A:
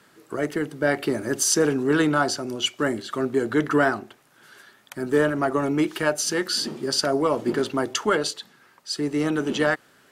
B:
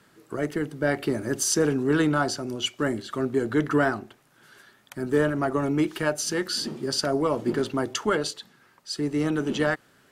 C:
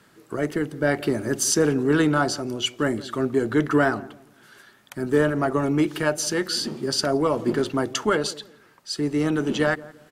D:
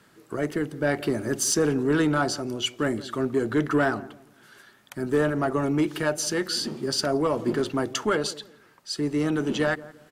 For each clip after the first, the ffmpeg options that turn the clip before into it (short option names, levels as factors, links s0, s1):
-af "lowshelf=f=170:g=8.5,volume=0.668"
-filter_complex "[0:a]asplit=2[s0][s1];[s1]adelay=170,lowpass=f=820:p=1,volume=0.133,asplit=2[s2][s3];[s3]adelay=170,lowpass=f=820:p=1,volume=0.33,asplit=2[s4][s5];[s5]adelay=170,lowpass=f=820:p=1,volume=0.33[s6];[s0][s2][s4][s6]amix=inputs=4:normalize=0,volume=1.33"
-af "asoftclip=type=tanh:threshold=0.282,volume=0.841"